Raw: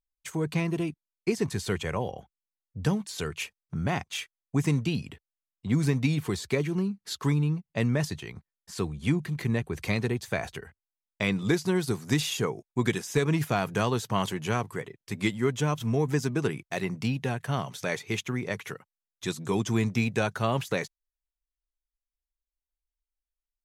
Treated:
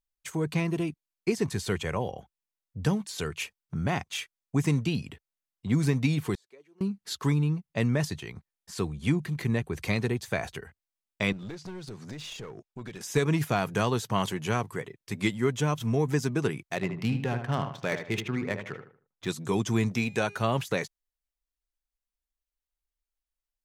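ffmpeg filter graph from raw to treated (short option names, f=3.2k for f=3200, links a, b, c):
-filter_complex "[0:a]asettb=1/sr,asplit=3[a][b][c];[a]atrim=end=6.354[d];[b]atrim=start=6.35:end=6.81,asetpts=PTS-STARTPTS,afade=t=in:d=0.004:c=qsin,afade=t=out:st=0.456:d=0.004:c=qsin,bandpass=f=400:t=q:w=1.4,aderivative[e];[c]atrim=start=6.806[f];[d][e]acrossfade=d=0.004:c1=hsin:c2=qsin[g];[g][f]acrossfade=d=0.004:c1=qsin:c2=hsin,asettb=1/sr,asplit=3[h][i][j];[h]atrim=end=11.324[k];[i]atrim=start=11.32:end=13.01,asetpts=PTS-STARTPTS,afade=t=in:d=0.004:c=qsin,afade=t=out:st=1.686:d=0.004:c=qsin,lowpass=5.9k,acompressor=threshold=-38dB:ratio=3:attack=3.2:release=140:knee=1:detection=peak,aeval=exprs='clip(val(0),-1,0.0112)':c=same[l];[j]atrim=start=13.006[m];[k][l]acrossfade=d=0.004:c1=hsin:c2=qsin[n];[n][m]acrossfade=d=0.004:c1=qsin:c2=hsin,asettb=1/sr,asplit=3[o][p][q];[o]atrim=end=16.754[r];[p]atrim=start=16.75:end=19.29,asetpts=PTS-STARTPTS,afade=t=in:d=0.004:c=qsin,afade=t=out:st=2.536:d=0.004:c=qsin,adynamicsmooth=sensitivity=6.5:basefreq=1.8k,asplit=2[s][t];[t]adelay=76,lowpass=f=2.7k:p=1,volume=-7.5dB,asplit=2[u][v];[v]adelay=76,lowpass=f=2.7k:p=1,volume=0.33,asplit=2[w][x];[x]adelay=76,lowpass=f=2.7k:p=1,volume=0.33,asplit=2[y][z];[z]adelay=76,lowpass=f=2.7k:p=1,volume=0.33[aa];[s][u][w][y][aa]amix=inputs=5:normalize=0,atrim=end_sample=112014[ab];[q]atrim=start=19.286[ac];[r][ab]acrossfade=d=0.004:c1=hsin:c2=qsin[ad];[ad][ac]acrossfade=d=0.004:c1=qsin:c2=hsin,asettb=1/sr,asplit=3[ae][af][ag];[ae]atrim=end=19.914[ah];[af]atrim=start=19.91:end=20.41,asetpts=PTS-STARTPTS,afade=t=in:d=0.004:c=qsin,afade=t=out:st=0.496:d=0.004:c=qsin,equalizer=f=92:w=0.67:g=-5.5,bandreject=f=408.5:t=h:w=4,bandreject=f=817:t=h:w=4,bandreject=f=1.2255k:t=h:w=4,bandreject=f=1.634k:t=h:w=4,bandreject=f=2.0425k:t=h:w=4,bandreject=f=2.451k:t=h:w=4,bandreject=f=2.8595k:t=h:w=4,bandreject=f=3.268k:t=h:w=4,bandreject=f=3.6765k:t=h:w=4,bandreject=f=4.085k:t=h:w=4,bandreject=f=4.4935k:t=h:w=4,bandreject=f=4.902k:t=h:w=4,bandreject=f=5.3105k:t=h:w=4,bandreject=f=5.719k:t=h:w=4,bandreject=f=6.1275k:t=h:w=4,bandreject=f=6.536k:t=h:w=4,bandreject=f=6.9445k:t=h:w=4,bandreject=f=7.353k:t=h:w=4,bandreject=f=7.7615k:t=h:w=4,bandreject=f=8.17k:t=h:w=4,bandreject=f=8.5785k:t=h:w=4,bandreject=f=8.987k:t=h:w=4,bandreject=f=9.3955k:t=h:w=4,bandreject=f=9.804k:t=h:w=4,bandreject=f=10.2125k:t=h:w=4,bandreject=f=10.621k:t=h:w=4,bandreject=f=11.0295k:t=h:w=4,bandreject=f=11.438k:t=h:w=4,bandreject=f=11.8465k:t=h:w=4,bandreject=f=12.255k:t=h:w=4,bandreject=f=12.6635k:t=h:w=4,bandreject=f=13.072k:t=h:w=4,bandreject=f=13.4805k:t=h:w=4,bandreject=f=13.889k:t=h:w=4,bandreject=f=14.2975k:t=h:w=4,bandreject=f=14.706k:t=h:w=4,acompressor=mode=upward:threshold=-33dB:ratio=2.5:attack=3.2:release=140:knee=2.83:detection=peak[ai];[ag]atrim=start=20.406[aj];[ah][ai]acrossfade=d=0.004:c1=hsin:c2=qsin[ak];[ak][aj]acrossfade=d=0.004:c1=qsin:c2=hsin"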